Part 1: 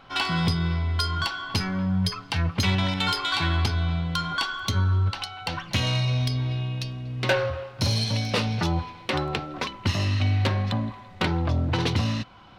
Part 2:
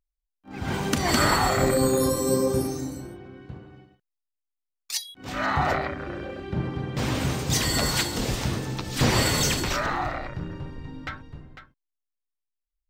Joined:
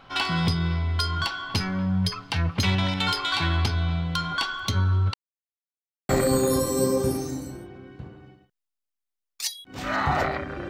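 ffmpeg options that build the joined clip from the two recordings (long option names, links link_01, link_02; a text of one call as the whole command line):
ffmpeg -i cue0.wav -i cue1.wav -filter_complex "[0:a]apad=whole_dur=10.69,atrim=end=10.69,asplit=2[link_01][link_02];[link_01]atrim=end=5.14,asetpts=PTS-STARTPTS,afade=type=out:start_time=5.136:duration=0.004:curve=hsin[link_03];[link_02]atrim=start=5.14:end=6.09,asetpts=PTS-STARTPTS,volume=0[link_04];[1:a]atrim=start=1.59:end=6.19,asetpts=PTS-STARTPTS,afade=type=in:duration=0.004:curve=hsin[link_05];[link_03][link_04][link_05]concat=n=3:v=0:a=1" out.wav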